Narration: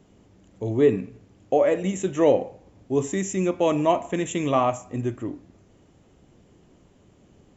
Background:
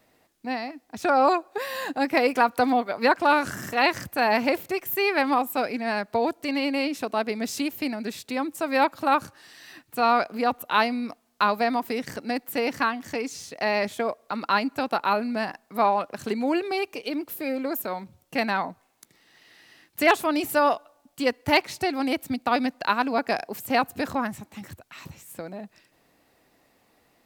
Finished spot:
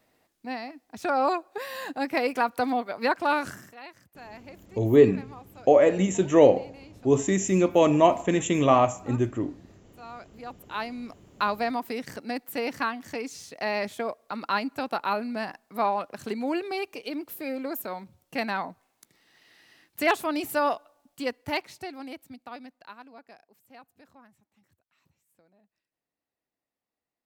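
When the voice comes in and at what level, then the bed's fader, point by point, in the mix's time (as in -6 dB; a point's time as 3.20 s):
4.15 s, +2.0 dB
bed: 3.49 s -4.5 dB
3.80 s -23.5 dB
10.04 s -23.5 dB
11.23 s -4 dB
21.03 s -4 dB
23.51 s -28 dB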